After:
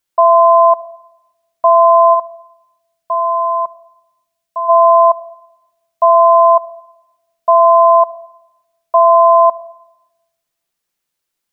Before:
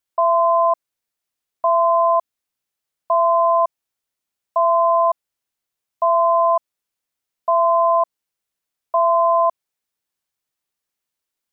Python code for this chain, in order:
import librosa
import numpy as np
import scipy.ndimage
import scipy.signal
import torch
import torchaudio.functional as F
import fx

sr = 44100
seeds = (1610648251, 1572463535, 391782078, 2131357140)

y = fx.peak_eq(x, sr, hz=730.0, db=fx.line((2.13, -6.5), (4.68, -14.5)), octaves=1.2, at=(2.13, 4.68), fade=0.02)
y = fx.room_shoebox(y, sr, seeds[0], volume_m3=3500.0, walls='furnished', distance_m=0.79)
y = F.gain(torch.from_numpy(y), 6.0).numpy()